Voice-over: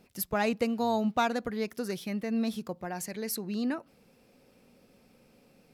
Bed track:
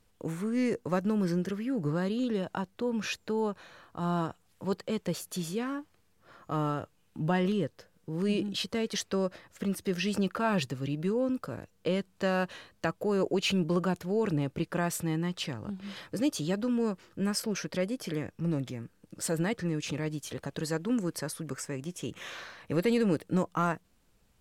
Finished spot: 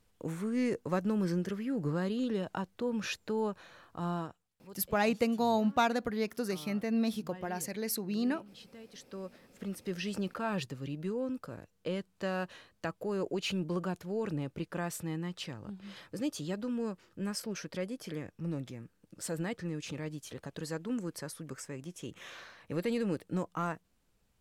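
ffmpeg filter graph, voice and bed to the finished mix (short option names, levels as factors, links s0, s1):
-filter_complex "[0:a]adelay=4600,volume=0.944[s0];[1:a]volume=3.76,afade=t=out:st=3.97:d=0.53:silence=0.133352,afade=t=in:st=8.9:d=1.01:silence=0.199526[s1];[s0][s1]amix=inputs=2:normalize=0"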